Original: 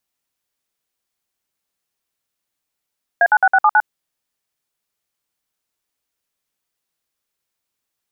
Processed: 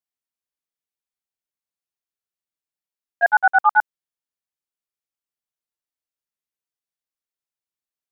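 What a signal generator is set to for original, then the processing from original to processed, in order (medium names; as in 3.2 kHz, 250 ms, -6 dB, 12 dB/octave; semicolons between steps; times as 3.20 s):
DTMF "A96679", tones 52 ms, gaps 56 ms, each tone -11.5 dBFS
gate -13 dBFS, range -15 dB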